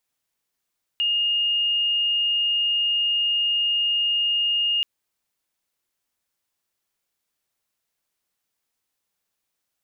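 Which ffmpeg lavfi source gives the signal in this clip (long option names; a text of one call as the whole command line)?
ffmpeg -f lavfi -i "aevalsrc='0.112*sin(2*PI*2840*t)':duration=3.83:sample_rate=44100" out.wav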